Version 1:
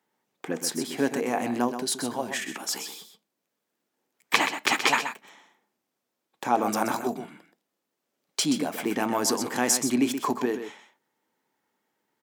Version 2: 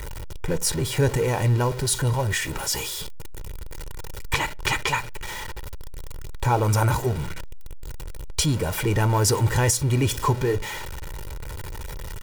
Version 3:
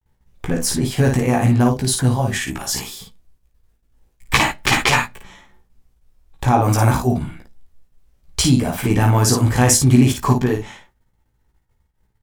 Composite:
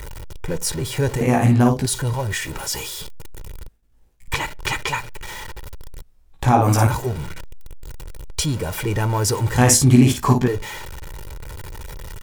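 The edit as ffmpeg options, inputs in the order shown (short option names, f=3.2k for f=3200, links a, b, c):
-filter_complex "[2:a]asplit=4[a][b][c][d];[1:a]asplit=5[e][f][g][h][i];[e]atrim=end=1.212[j];[a]atrim=start=1.208:end=1.862[k];[f]atrim=start=1.858:end=3.682[l];[b]atrim=start=3.678:end=4.282[m];[g]atrim=start=4.278:end=6.022[n];[c]atrim=start=6.018:end=6.872[o];[h]atrim=start=6.868:end=9.582[p];[d]atrim=start=9.578:end=10.482[q];[i]atrim=start=10.478[r];[j][k]acrossfade=d=0.004:c1=hsin:c2=hsin[s];[s][l]acrossfade=d=0.004:c1=hsin:c2=hsin[t];[t][m]acrossfade=d=0.004:c1=hsin:c2=hsin[u];[u][n]acrossfade=d=0.004:c1=hsin:c2=hsin[v];[v][o]acrossfade=d=0.004:c1=hsin:c2=hsin[w];[w][p]acrossfade=d=0.004:c1=hsin:c2=hsin[x];[x][q]acrossfade=d=0.004:c1=hsin:c2=hsin[y];[y][r]acrossfade=d=0.004:c1=hsin:c2=hsin"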